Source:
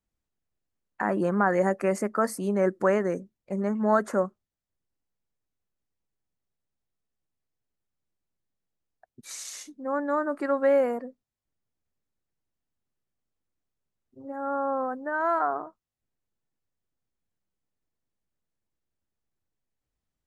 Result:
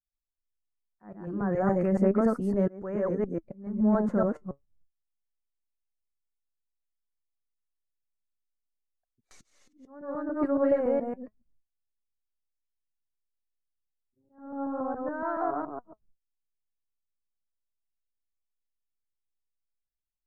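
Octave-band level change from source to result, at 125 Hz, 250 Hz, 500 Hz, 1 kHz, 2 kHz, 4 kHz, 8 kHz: no reading, +2.0 dB, -3.0 dB, -6.5 dB, -11.0 dB, under -15 dB, under -20 dB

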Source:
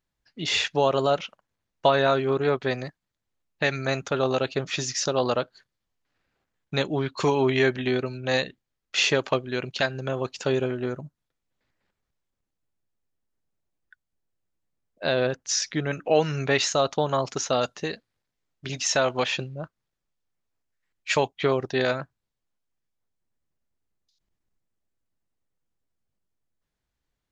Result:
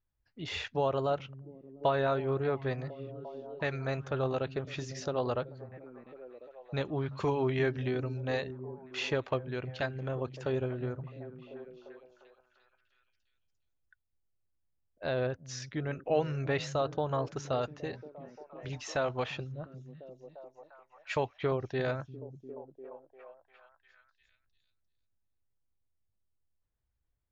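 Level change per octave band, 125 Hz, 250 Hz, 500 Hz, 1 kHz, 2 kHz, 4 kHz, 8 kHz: -3.5 dB, -7.5 dB, -7.5 dB, -8.5 dB, -11.0 dB, -15.0 dB, -19.0 dB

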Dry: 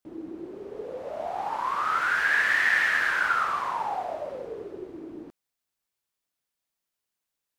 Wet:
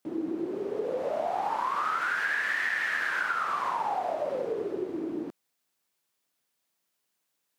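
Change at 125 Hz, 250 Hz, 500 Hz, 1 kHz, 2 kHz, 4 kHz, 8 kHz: no reading, +6.0 dB, +4.0 dB, -1.5 dB, -5.5 dB, -5.0 dB, -4.5 dB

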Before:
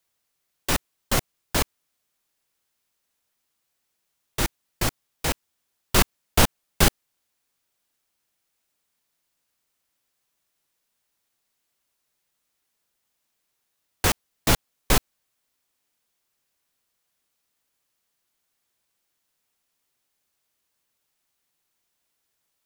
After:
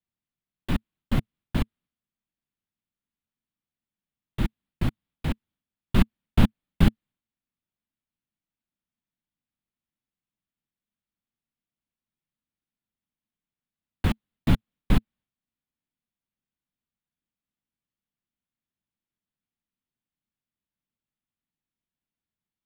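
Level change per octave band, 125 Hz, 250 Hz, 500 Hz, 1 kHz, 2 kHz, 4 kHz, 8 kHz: +3.5 dB, +3.5 dB, -8.0 dB, -9.5 dB, -9.5 dB, -12.0 dB, -23.0 dB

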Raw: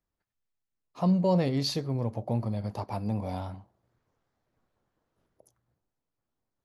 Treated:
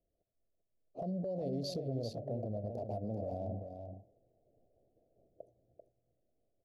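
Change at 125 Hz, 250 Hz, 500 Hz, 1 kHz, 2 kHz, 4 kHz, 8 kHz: -10.5 dB, -11.5 dB, -6.0 dB, -11.5 dB, under -25 dB, -12.5 dB, -12.0 dB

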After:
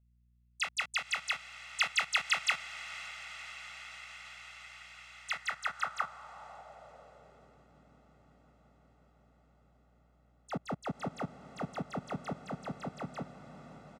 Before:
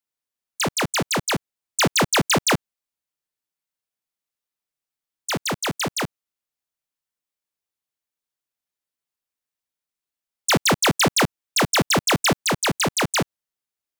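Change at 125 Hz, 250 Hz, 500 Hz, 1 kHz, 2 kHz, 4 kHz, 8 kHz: -18.0 dB, -18.0 dB, -19.5 dB, -14.5 dB, -10.5 dB, -15.5 dB, -21.5 dB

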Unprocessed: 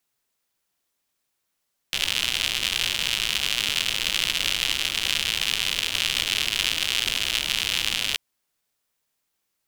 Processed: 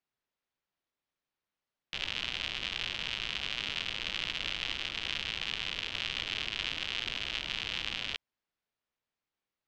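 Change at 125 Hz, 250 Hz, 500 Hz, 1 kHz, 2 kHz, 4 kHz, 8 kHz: -7.0 dB, -7.0 dB, -7.5 dB, -8.0 dB, -9.5 dB, -11.5 dB, -21.5 dB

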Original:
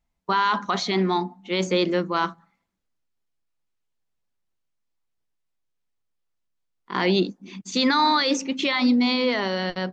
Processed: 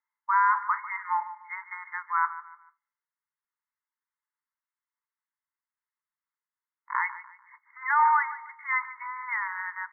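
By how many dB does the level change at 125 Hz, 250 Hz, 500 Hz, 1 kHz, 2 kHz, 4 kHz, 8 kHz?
under -40 dB, under -40 dB, under -40 dB, -0.5 dB, -1.0 dB, under -40 dB, no reading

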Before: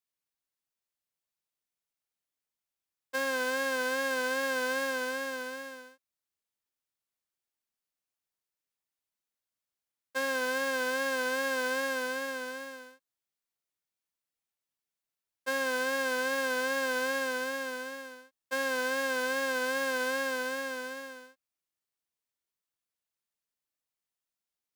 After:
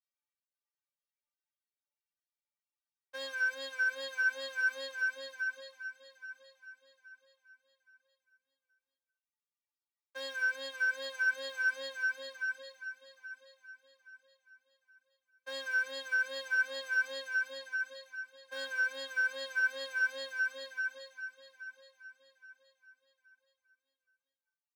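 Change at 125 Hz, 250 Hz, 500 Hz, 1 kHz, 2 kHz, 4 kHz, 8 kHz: no reading, under -20 dB, -13.0 dB, -17.5 dB, +1.0 dB, -4.0 dB, -12.0 dB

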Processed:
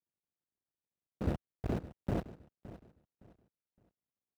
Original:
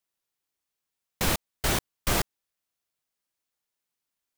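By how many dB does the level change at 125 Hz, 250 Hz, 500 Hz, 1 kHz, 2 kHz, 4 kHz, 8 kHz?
-3.5 dB, -3.0 dB, -6.5 dB, -14.5 dB, -21.0 dB, -27.5 dB, under -30 dB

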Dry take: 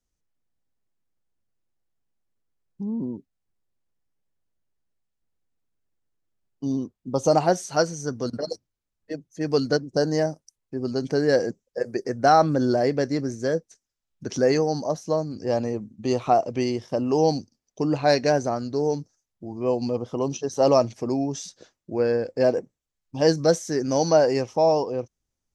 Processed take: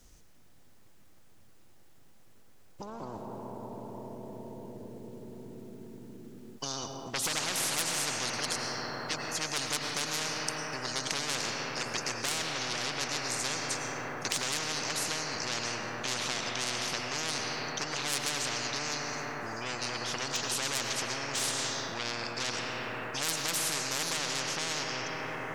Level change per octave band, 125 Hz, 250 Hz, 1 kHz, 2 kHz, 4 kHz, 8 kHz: -13.0 dB, -15.5 dB, -10.0 dB, +2.0 dB, +4.5 dB, +6.0 dB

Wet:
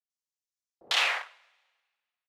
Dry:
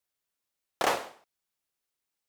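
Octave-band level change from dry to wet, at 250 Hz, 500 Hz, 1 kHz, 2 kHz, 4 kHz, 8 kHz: under -15 dB, -10.0 dB, -3.5 dB, +7.5 dB, +10.5 dB, +0.5 dB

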